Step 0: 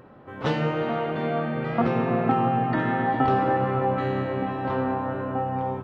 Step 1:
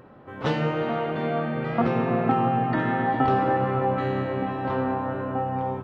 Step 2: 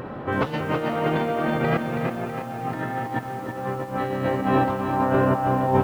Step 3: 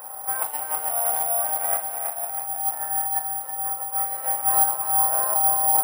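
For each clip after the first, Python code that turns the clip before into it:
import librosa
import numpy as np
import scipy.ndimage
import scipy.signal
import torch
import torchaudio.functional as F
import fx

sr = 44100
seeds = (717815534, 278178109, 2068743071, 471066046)

y1 = x
y2 = fx.over_compress(y1, sr, threshold_db=-31.0, ratio=-0.5)
y2 = fx.echo_crushed(y2, sr, ms=325, feedback_pct=55, bits=9, wet_db=-6)
y2 = F.gain(torch.from_numpy(y2), 7.5).numpy()
y3 = fx.ladder_highpass(y2, sr, hz=710.0, resonance_pct=70)
y3 = fx.room_flutter(y3, sr, wall_m=7.1, rt60_s=0.25)
y3 = (np.kron(scipy.signal.resample_poly(y3, 1, 4), np.eye(4)[0]) * 4)[:len(y3)]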